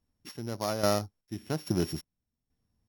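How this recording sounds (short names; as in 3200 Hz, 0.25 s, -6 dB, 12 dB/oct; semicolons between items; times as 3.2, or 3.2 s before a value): a buzz of ramps at a fixed pitch in blocks of 8 samples; chopped level 1.2 Hz, depth 65%, duty 45%; AC-3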